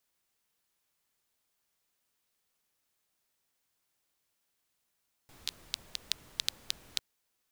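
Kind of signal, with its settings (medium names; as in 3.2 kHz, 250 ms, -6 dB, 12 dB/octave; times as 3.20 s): rain from filtered ticks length 1.70 s, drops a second 5.3, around 3.9 kHz, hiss -16 dB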